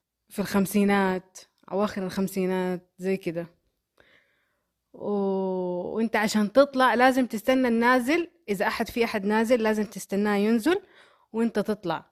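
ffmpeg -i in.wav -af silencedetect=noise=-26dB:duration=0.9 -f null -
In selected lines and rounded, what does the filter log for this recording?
silence_start: 3.42
silence_end: 5.03 | silence_duration: 1.62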